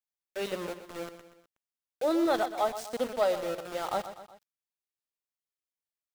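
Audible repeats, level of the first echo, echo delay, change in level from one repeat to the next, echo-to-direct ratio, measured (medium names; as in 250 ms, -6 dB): 3, -12.0 dB, 123 ms, -6.0 dB, -11.0 dB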